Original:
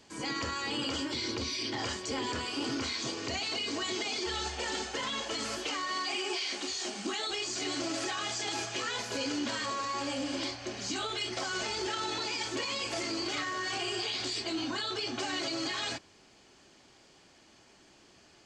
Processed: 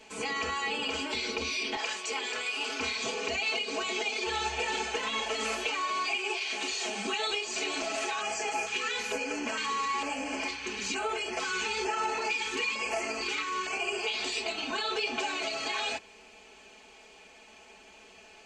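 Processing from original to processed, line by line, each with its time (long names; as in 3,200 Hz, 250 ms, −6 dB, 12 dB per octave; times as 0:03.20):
0:01.76–0:02.80: high-pass filter 990 Hz 6 dB per octave
0:08.21–0:14.07: auto-filter notch square 1.1 Hz 650–3,700 Hz
whole clip: thirty-one-band graphic EQ 160 Hz −12 dB, 250 Hz −5 dB, 500 Hz +6 dB, 800 Hz +6 dB, 2,500 Hz +12 dB, 5,000 Hz −5 dB; downward compressor, threshold −32 dBFS; comb filter 4.6 ms, depth 99%; level +1 dB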